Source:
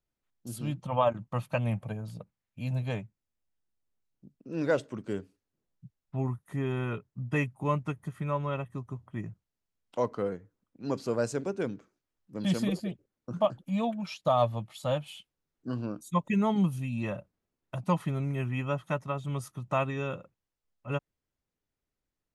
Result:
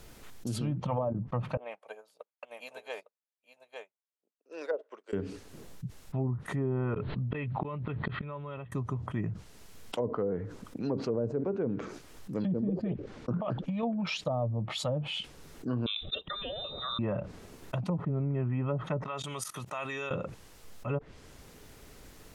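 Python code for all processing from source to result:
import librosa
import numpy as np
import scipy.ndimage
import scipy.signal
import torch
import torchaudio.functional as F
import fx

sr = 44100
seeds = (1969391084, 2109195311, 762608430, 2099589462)

y = fx.chain(x, sr, fx.highpass(hz=480.0, slope=24),
    fx.echo_single(ms=856, db=-6.5),
    fx.upward_expand(threshold_db=-55.0, expansion=2.5), at=(1.57, 5.13))
y = fx.chain(y, sr, fx.cheby1_lowpass(hz=4200.0, order=6),
    fx.gate_flip(shuts_db=-29.0, range_db=-32),
    fx.pre_swell(db_per_s=38.0), at=(6.94, 8.72))
y = fx.chain(y, sr, fx.bessel_lowpass(hz=3700.0, order=2),
    fx.over_compress(threshold_db=-35.0, ratio=-1.0), at=(12.82, 13.83))
y = fx.chain(y, sr, fx.freq_invert(carrier_hz=3800),
    fx.peak_eq(hz=300.0, db=-5.0, octaves=0.22), at=(15.86, 16.99))
y = fx.chain(y, sr, fx.level_steps(step_db=22),
    fx.highpass(hz=1200.0, slope=6), at=(19.04, 20.11))
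y = fx.env_lowpass_down(y, sr, base_hz=450.0, full_db=-25.0)
y = fx.peak_eq(y, sr, hz=440.0, db=4.5, octaves=0.22)
y = fx.env_flatten(y, sr, amount_pct=70)
y = y * 10.0 ** (-4.5 / 20.0)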